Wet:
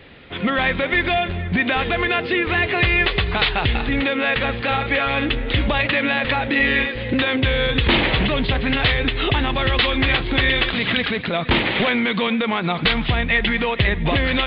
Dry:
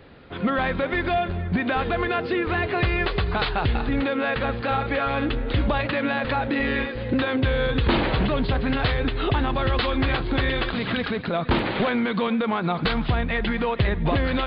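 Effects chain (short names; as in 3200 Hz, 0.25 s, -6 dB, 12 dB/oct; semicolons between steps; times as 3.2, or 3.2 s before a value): band shelf 2600 Hz +8.5 dB 1.2 oct; gain +2 dB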